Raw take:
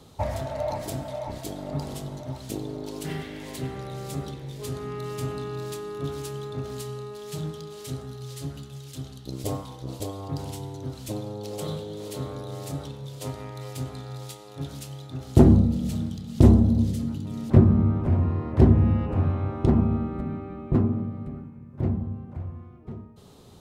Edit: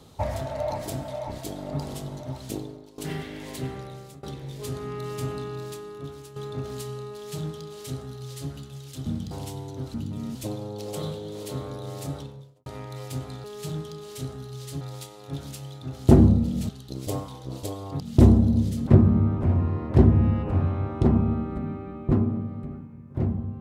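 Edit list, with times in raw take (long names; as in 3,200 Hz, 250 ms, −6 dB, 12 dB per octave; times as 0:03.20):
0:02.57–0:02.98: fade out quadratic, to −17 dB
0:03.70–0:04.23: fade out, to −22.5 dB
0:05.35–0:06.36: fade out, to −12 dB
0:07.13–0:08.50: duplicate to 0:14.09
0:09.06–0:10.37: swap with 0:15.97–0:16.22
0:12.78–0:13.31: fade out and dull
0:17.08–0:17.49: move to 0:11.00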